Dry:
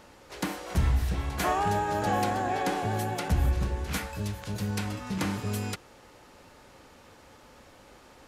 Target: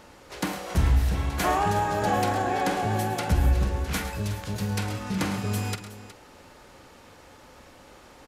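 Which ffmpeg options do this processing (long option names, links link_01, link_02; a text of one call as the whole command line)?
ffmpeg -i in.wav -af "aecho=1:1:47|108|134|367:0.224|0.224|0.15|0.188,volume=2.5dB" out.wav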